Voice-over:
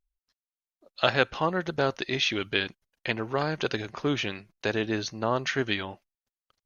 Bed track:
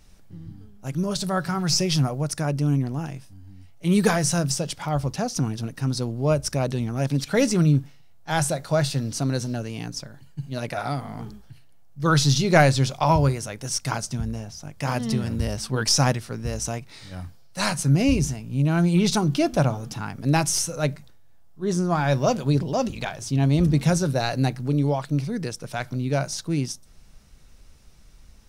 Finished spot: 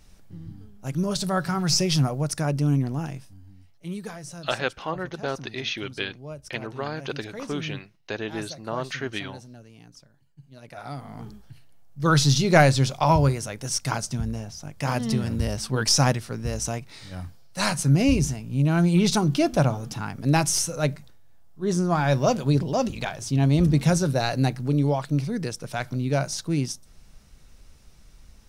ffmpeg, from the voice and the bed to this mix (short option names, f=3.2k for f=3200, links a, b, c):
-filter_complex "[0:a]adelay=3450,volume=-3.5dB[a];[1:a]volume=17dB,afade=t=out:st=3.13:d=0.87:silence=0.141254,afade=t=in:st=10.62:d=0.98:silence=0.141254[b];[a][b]amix=inputs=2:normalize=0"